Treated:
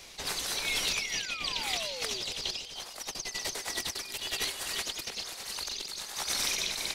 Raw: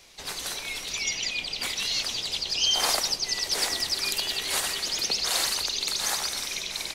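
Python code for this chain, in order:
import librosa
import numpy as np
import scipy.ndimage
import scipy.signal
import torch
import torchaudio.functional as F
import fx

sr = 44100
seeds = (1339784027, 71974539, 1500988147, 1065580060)

y = fx.over_compress(x, sr, threshold_db=-33.0, ratio=-0.5)
y = fx.spec_paint(y, sr, seeds[0], shape='fall', start_s=0.43, length_s=1.79, low_hz=350.0, high_hz=5500.0, level_db=-42.0)
y = fx.echo_feedback(y, sr, ms=329, feedback_pct=24, wet_db=-12.0)
y = y * (1.0 - 0.39 / 2.0 + 0.39 / 2.0 * np.cos(2.0 * np.pi * 1.1 * (np.arange(len(y)) / sr)))
y = fx.attack_slew(y, sr, db_per_s=400.0)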